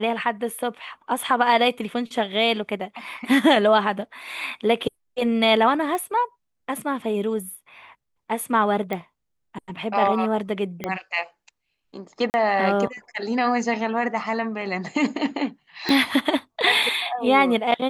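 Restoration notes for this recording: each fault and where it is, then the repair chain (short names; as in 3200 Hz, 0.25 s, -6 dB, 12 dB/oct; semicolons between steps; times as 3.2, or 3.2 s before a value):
5.95 pop -16 dBFS
8.93 pop -15 dBFS
10.84 pop -13 dBFS
12.3–12.34 gap 39 ms
15.89 pop -11 dBFS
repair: de-click; interpolate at 12.3, 39 ms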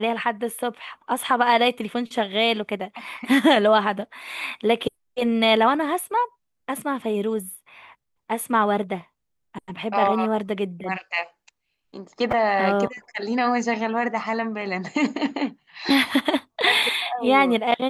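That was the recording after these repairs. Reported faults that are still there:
5.95 pop
10.84 pop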